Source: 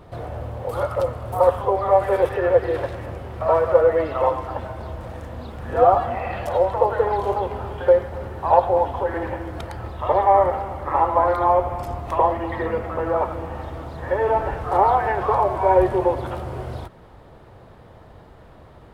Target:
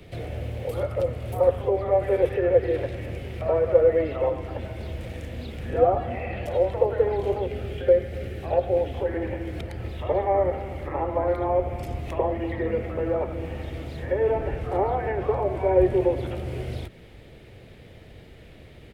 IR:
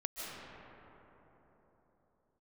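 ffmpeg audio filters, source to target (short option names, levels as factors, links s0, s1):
-filter_complex "[0:a]asettb=1/sr,asplit=3[s0][s1][s2];[s0]atrim=end=7.464[s3];[s1]atrim=start=7.46:end=8.97,asetpts=PTS-STARTPTS,afade=t=in:d=0.004:c=qsin,afade=t=out:st=1.506:d=0.004:c=qsin,equalizer=f=950:w=4.7:g=-14[s4];[s2]atrim=start=8.966[s5];[s3][s4]acrossfade=d=0.004:c1=hsin:c2=qsin[s6];[s6][s5]acrossfade=d=0.004:c1=qsin:c2=hsin,acrossover=split=110|380|1400[s7][s8][s9][s10];[s10]acompressor=threshold=0.00355:ratio=6[s11];[s7][s8][s9][s11]amix=inputs=4:normalize=0,firequalizer=gain_entry='entry(430,0);entry(1000,-15);entry(2200,9);entry(4400,4)':delay=0.05:min_phase=1"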